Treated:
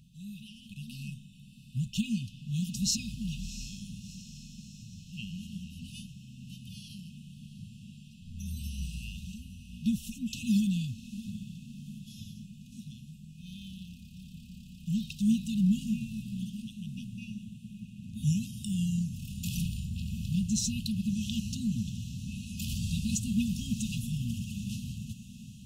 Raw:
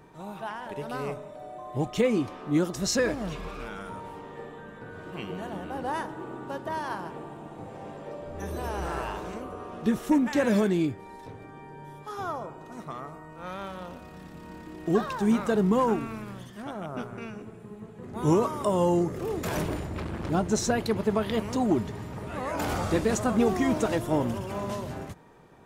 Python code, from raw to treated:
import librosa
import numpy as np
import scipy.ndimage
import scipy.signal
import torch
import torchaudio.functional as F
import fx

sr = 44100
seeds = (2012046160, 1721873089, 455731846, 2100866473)

p1 = fx.brickwall_bandstop(x, sr, low_hz=240.0, high_hz=2500.0)
y = p1 + fx.echo_diffused(p1, sr, ms=703, feedback_pct=57, wet_db=-13.5, dry=0)